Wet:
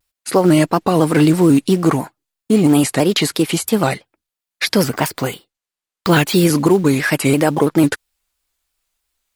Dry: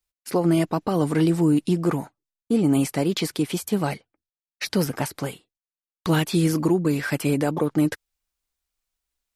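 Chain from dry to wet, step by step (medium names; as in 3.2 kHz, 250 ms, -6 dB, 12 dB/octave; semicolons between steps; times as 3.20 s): bass shelf 400 Hz -5 dB; band-stop 5.8 kHz, Q 13; in parallel at -5.5 dB: short-mantissa float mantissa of 2-bit; 4.83–6.46 s: on the sum: careless resampling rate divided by 2×, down filtered, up hold; vibrato with a chosen wave square 3 Hz, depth 100 cents; trim +7 dB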